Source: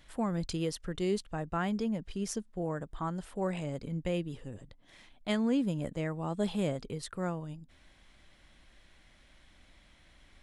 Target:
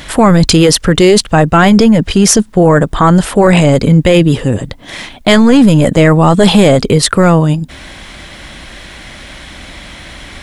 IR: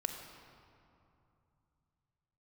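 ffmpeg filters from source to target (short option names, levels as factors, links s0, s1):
-af "highpass=f=60:p=1,apsyclip=47.3,volume=0.841"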